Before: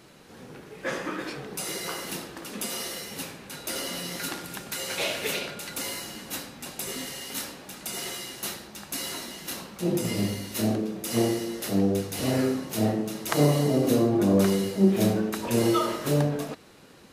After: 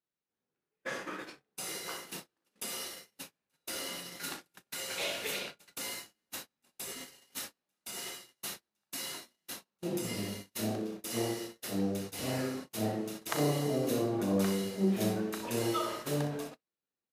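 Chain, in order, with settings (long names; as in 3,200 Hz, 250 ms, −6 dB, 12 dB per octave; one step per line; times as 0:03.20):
low-shelf EQ 470 Hz −5 dB
ambience of single reflections 37 ms −10.5 dB, 62 ms −10 dB
noise gate −34 dBFS, range −37 dB
level −6.5 dB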